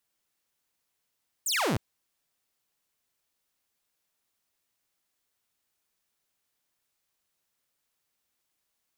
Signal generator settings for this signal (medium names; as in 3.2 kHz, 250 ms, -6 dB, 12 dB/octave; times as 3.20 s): laser zap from 9.2 kHz, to 88 Hz, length 0.31 s saw, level -22 dB